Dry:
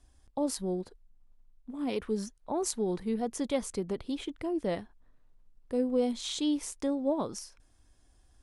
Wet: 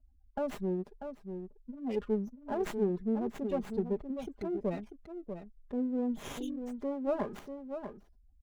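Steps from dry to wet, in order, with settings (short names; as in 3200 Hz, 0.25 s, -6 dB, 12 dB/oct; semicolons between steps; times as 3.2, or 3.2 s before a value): median filter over 3 samples; outdoor echo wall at 110 m, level -8 dB; spectral gate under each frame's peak -20 dB strong; comb 4.9 ms, depth 75%; running maximum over 9 samples; gain -3.5 dB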